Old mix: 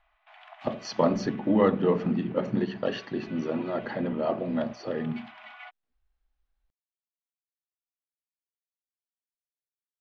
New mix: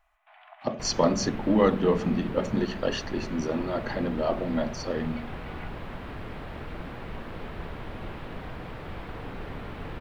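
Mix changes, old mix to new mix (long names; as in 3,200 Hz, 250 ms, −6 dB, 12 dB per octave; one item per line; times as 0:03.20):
first sound: add high-frequency loss of the air 480 metres
second sound: unmuted
master: remove high-frequency loss of the air 220 metres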